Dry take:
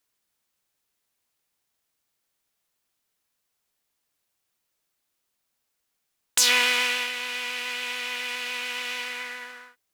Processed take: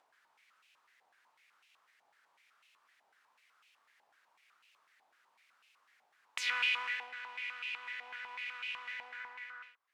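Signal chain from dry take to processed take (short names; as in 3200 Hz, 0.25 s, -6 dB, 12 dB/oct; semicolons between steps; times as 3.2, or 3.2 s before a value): upward compressor, threshold -29 dBFS; stepped band-pass 8 Hz 800–2600 Hz; gain -4 dB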